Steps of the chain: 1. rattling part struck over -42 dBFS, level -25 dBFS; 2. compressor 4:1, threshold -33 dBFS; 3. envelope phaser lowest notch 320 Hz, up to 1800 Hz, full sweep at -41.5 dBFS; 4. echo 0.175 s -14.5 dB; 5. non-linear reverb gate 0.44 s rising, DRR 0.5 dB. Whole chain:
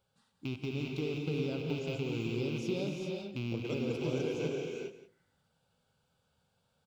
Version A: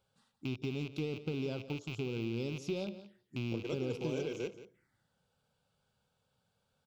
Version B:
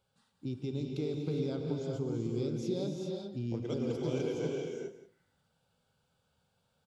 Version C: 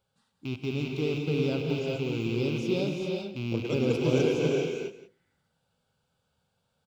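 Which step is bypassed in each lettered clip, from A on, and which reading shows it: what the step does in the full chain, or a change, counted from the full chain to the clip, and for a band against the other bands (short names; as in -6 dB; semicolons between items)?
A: 5, loudness change -2.5 LU; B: 1, 2 kHz band -9.5 dB; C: 2, mean gain reduction 5.5 dB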